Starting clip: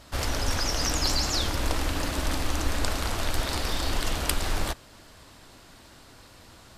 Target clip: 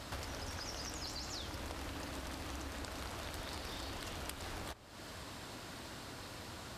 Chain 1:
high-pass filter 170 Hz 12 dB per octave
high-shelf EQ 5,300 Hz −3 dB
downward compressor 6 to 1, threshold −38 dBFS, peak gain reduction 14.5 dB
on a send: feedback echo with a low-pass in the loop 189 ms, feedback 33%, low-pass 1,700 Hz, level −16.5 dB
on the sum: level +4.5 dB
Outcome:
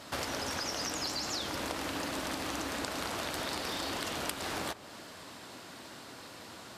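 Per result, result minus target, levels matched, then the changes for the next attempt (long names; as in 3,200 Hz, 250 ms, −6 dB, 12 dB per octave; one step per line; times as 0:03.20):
125 Hz band −9.5 dB; downward compressor: peak gain reduction −8 dB
change: high-pass filter 59 Hz 12 dB per octave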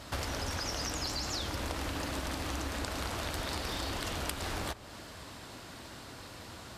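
downward compressor: peak gain reduction −8 dB
change: downward compressor 6 to 1, threshold −47.5 dBFS, peak gain reduction 23 dB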